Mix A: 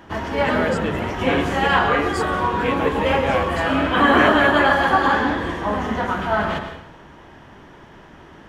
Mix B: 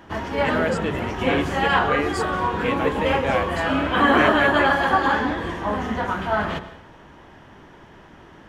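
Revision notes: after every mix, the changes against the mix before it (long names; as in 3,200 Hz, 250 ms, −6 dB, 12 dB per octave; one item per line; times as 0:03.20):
background: send −8.5 dB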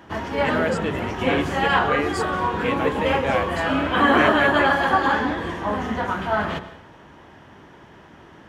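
background: add high-pass filter 58 Hz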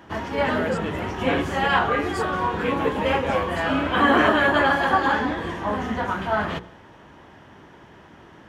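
speech −5.0 dB
background: send −10.0 dB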